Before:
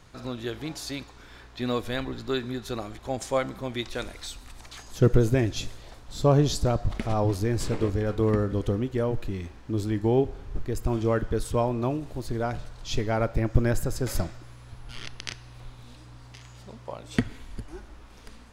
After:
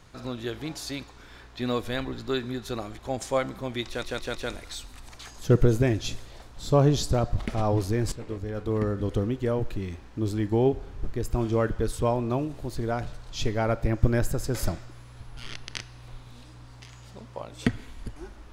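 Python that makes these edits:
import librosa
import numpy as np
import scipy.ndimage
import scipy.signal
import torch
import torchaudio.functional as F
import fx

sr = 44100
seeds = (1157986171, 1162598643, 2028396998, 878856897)

y = fx.edit(x, sr, fx.stutter(start_s=3.87, slice_s=0.16, count=4),
    fx.fade_in_from(start_s=7.64, length_s=1.09, floor_db=-13.0), tone=tone)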